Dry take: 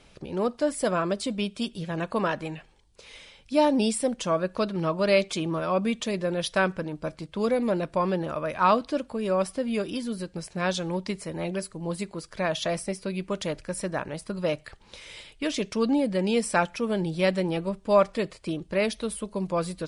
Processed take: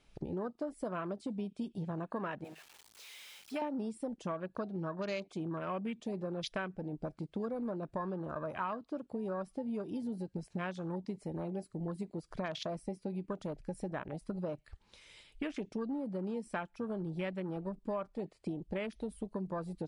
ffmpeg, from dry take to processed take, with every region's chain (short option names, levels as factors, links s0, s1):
-filter_complex "[0:a]asettb=1/sr,asplit=3[s0][s1][s2];[s0]atrim=end=2.444[s3];[s1]atrim=start=2.44:end=3.62,asetpts=PTS-STARTPTS,afade=t=in:d=0.004:c=qsin,afade=t=out:st=1.176:d=0.004:c=qsin,aeval=exprs='val(0)+0.5*0.02*sgn(val(0))':c=same,highpass=f=1400:p=1[s4];[s2]atrim=start=3.616[s5];[s3][s4]acrossfade=d=0.004:c1=hsin:c2=qsin[s6];[s6][s5]acrossfade=d=0.004:c1=qsin:c2=hsin,afwtdn=0.02,equalizer=f=530:t=o:w=0.4:g=-4,acompressor=threshold=0.0112:ratio=6,volume=1.41"